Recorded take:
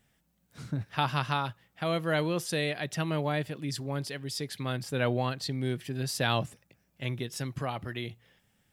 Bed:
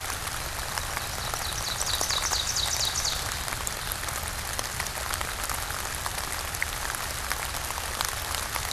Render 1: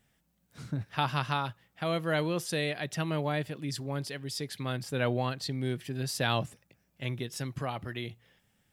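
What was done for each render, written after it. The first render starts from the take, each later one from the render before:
level −1 dB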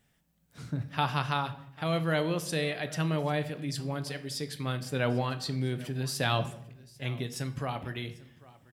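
single-tap delay 795 ms −21.5 dB
rectangular room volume 190 cubic metres, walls mixed, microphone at 0.32 metres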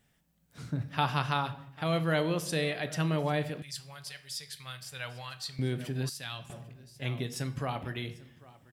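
0:03.62–0:05.59: guitar amp tone stack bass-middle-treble 10-0-10
0:06.09–0:06.50: guitar amp tone stack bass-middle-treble 5-5-5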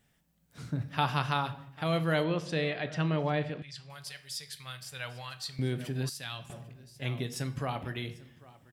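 0:02.24–0:03.90: low-pass filter 4,000 Hz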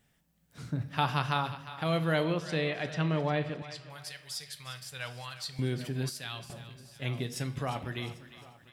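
feedback echo with a high-pass in the loop 353 ms, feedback 49%, high-pass 720 Hz, level −13 dB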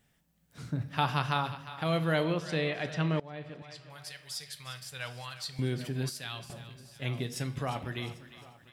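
0:03.20–0:04.58: fade in equal-power, from −22 dB

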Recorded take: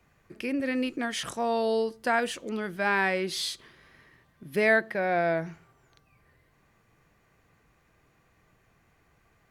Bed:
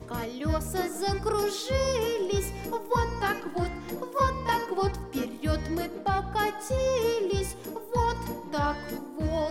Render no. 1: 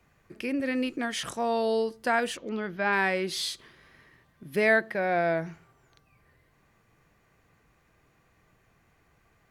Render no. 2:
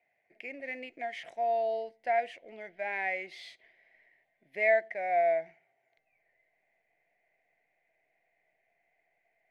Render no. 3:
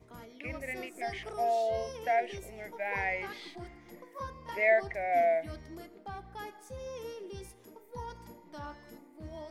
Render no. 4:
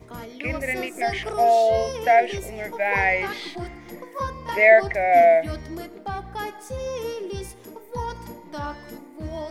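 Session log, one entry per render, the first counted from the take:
0:02.37–0:02.93: moving average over 5 samples
pair of resonant band-passes 1,200 Hz, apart 1.6 octaves; in parallel at −11.5 dB: slack as between gear wheels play −48.5 dBFS
mix in bed −16 dB
level +12 dB; brickwall limiter −3 dBFS, peak gain reduction 1 dB

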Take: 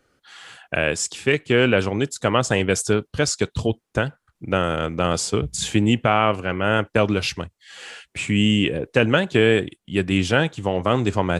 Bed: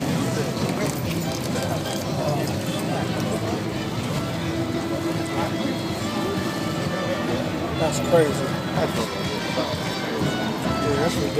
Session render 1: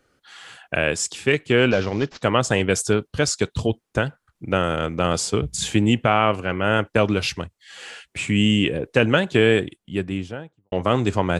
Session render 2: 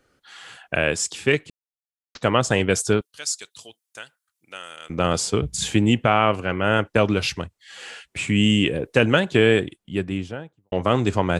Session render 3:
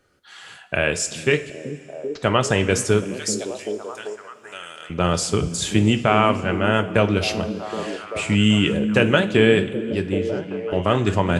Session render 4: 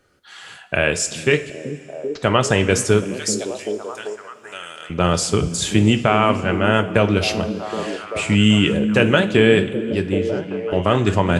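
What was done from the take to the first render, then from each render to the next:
0:01.71–0:02.23: variable-slope delta modulation 32 kbit/s; 0:09.56–0:10.72: fade out and dull
0:01.50–0:02.15: silence; 0:03.01–0:04.90: first difference; 0:08.43–0:09.20: high-shelf EQ 9,300 Hz +8 dB
echo through a band-pass that steps 386 ms, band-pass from 210 Hz, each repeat 0.7 octaves, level −4.5 dB; coupled-rooms reverb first 0.33 s, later 2.6 s, from −15 dB, DRR 8 dB
level +2.5 dB; brickwall limiter −2 dBFS, peak gain reduction 3 dB

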